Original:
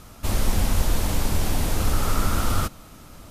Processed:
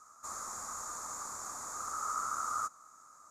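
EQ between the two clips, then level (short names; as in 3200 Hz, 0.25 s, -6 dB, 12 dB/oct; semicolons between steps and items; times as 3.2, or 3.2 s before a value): double band-pass 2900 Hz, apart 2.5 oct; 0.0 dB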